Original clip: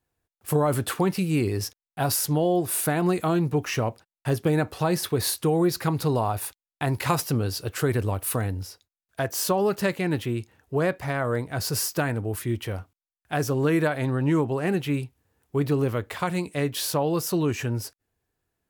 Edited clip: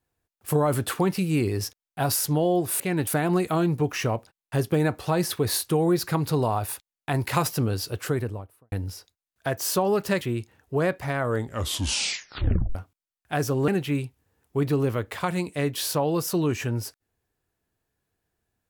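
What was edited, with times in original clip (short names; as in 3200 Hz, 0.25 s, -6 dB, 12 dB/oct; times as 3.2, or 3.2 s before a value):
7.62–8.45 studio fade out
9.94–10.21 move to 2.8
11.28 tape stop 1.47 s
13.68–14.67 cut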